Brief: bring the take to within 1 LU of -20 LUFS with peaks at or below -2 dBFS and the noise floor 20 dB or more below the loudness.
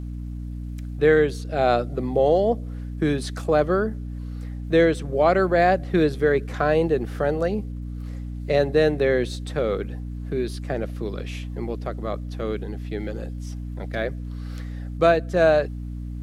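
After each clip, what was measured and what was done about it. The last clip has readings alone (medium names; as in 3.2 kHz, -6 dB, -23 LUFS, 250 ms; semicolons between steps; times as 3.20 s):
hum 60 Hz; highest harmonic 300 Hz; hum level -29 dBFS; loudness -23.0 LUFS; peak level -5.5 dBFS; loudness target -20.0 LUFS
-> hum notches 60/120/180/240/300 Hz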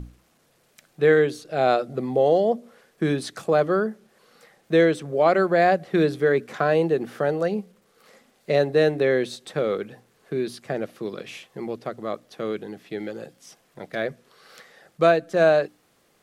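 hum not found; loudness -23.0 LUFS; peak level -6.0 dBFS; loudness target -20.0 LUFS
-> trim +3 dB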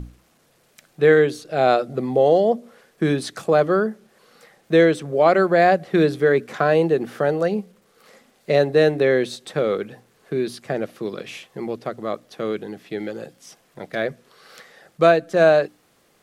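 loudness -20.0 LUFS; peak level -3.0 dBFS; noise floor -61 dBFS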